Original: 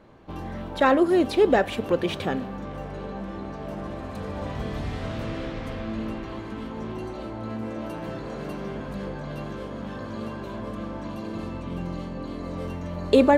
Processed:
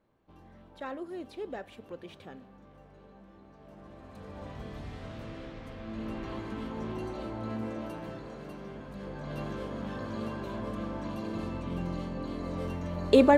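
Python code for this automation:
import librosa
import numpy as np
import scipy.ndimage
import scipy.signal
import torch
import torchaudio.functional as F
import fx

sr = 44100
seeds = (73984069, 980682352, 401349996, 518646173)

y = fx.gain(x, sr, db=fx.line((3.48, -20.0), (4.41, -11.0), (5.75, -11.0), (6.27, -3.0), (7.61, -3.0), (8.4, -10.0), (8.93, -10.0), (9.4, -2.5)))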